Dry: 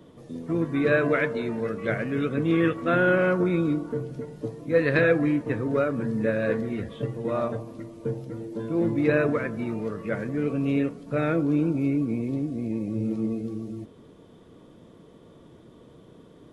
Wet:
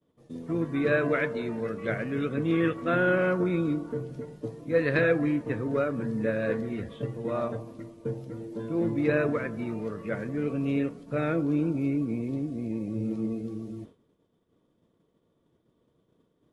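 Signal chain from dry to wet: expander -39 dBFS; gain -3 dB

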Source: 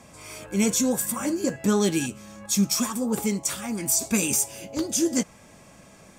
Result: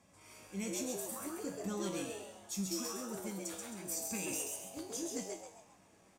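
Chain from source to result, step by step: resonator 94 Hz, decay 0.63 s, harmonics all, mix 80%; frequency-shifting echo 0.133 s, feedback 40%, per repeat +140 Hz, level -3.5 dB; added harmonics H 6 -30 dB, 8 -39 dB, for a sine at -18.5 dBFS; gain -7 dB

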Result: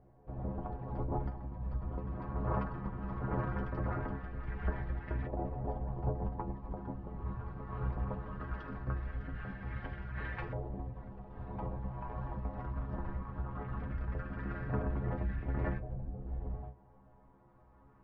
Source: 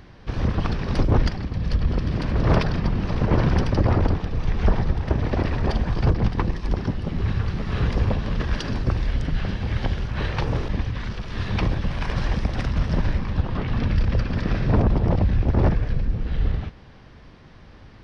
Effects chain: LFO low-pass saw up 0.19 Hz 700–1900 Hz; metallic resonator 63 Hz, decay 0.33 s, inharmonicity 0.008; gain -8 dB

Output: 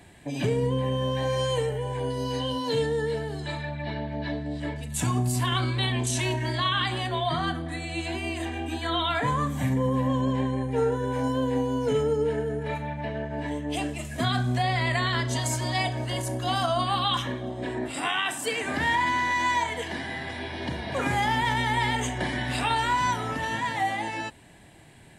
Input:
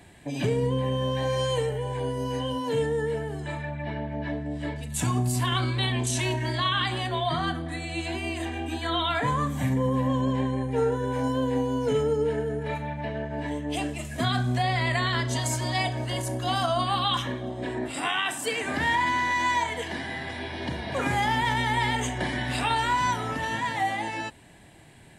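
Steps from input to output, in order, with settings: 2.1–4.6 bell 4200 Hz +13 dB 0.53 oct

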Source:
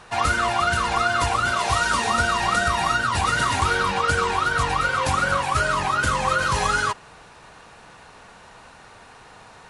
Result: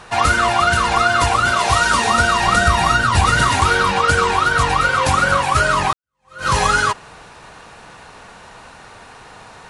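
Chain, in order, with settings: 2.47–3.49 low shelf 130 Hz +8 dB; 5.93–6.48 fade in exponential; gain +6 dB

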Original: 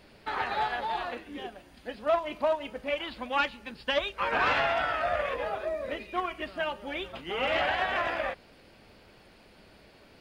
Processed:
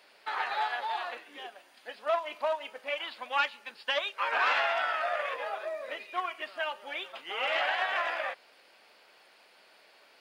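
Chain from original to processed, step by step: HPF 700 Hz 12 dB/oct

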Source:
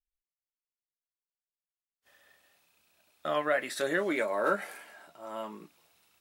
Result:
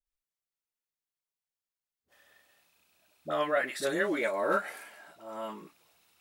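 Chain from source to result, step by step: dispersion highs, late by 59 ms, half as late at 560 Hz

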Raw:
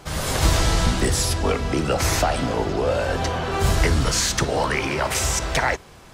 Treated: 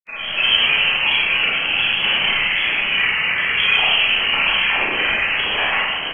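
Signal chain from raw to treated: bouncing-ball echo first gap 0.63 s, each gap 0.9×, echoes 5; inverted band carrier 2800 Hz; grains, pitch spread up and down by 3 st; Schroeder reverb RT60 0.99 s, combs from 28 ms, DRR -5.5 dB; gain -4.5 dB

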